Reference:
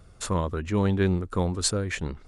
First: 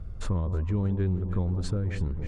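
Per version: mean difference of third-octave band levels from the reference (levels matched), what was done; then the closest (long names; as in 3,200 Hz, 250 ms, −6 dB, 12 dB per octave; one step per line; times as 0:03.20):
7.0 dB: RIAA equalisation playback
delay that swaps between a low-pass and a high-pass 157 ms, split 1,000 Hz, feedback 69%, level −10.5 dB
downward compressor 3 to 1, threshold −26 dBFS, peak gain reduction 12.5 dB
level −1.5 dB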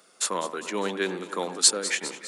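10.0 dB: Bessel high-pass filter 370 Hz, order 8
high-shelf EQ 2,200 Hz +9 dB
on a send: delay that swaps between a low-pass and a high-pass 101 ms, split 2,100 Hz, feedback 79%, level −12 dB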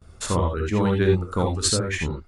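4.0 dB: reverb reduction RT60 0.72 s
noise gate with hold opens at −44 dBFS
reverb whose tail is shaped and stops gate 100 ms rising, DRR 1 dB
level +2.5 dB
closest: third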